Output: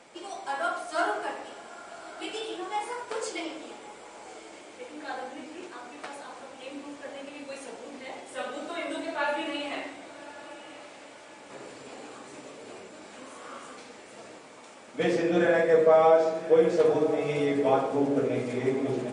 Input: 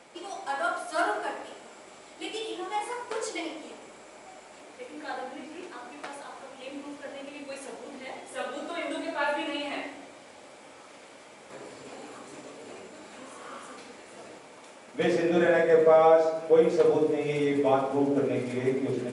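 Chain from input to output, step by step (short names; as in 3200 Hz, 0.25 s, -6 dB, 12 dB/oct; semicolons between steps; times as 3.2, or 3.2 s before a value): diffused feedback echo 1.151 s, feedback 42%, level -15 dB; MP3 40 kbps 22050 Hz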